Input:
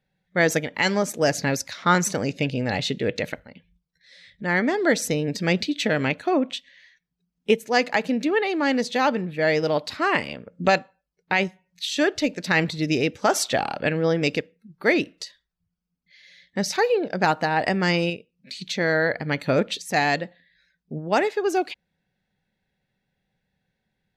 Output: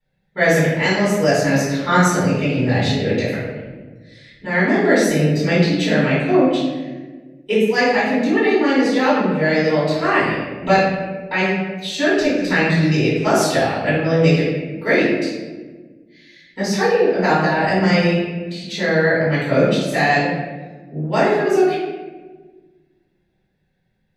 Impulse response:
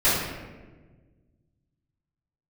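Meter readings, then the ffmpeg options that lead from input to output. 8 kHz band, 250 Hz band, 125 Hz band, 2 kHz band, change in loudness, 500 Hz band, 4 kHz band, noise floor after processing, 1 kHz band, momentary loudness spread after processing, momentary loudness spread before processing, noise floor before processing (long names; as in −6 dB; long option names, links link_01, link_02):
+1.0 dB, +8.0 dB, +9.5 dB, +5.0 dB, +6.0 dB, +6.5 dB, +2.5 dB, −65 dBFS, +4.5 dB, 11 LU, 10 LU, −79 dBFS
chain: -filter_complex "[1:a]atrim=start_sample=2205[link_01];[0:a][link_01]afir=irnorm=-1:irlink=0,volume=-12.5dB"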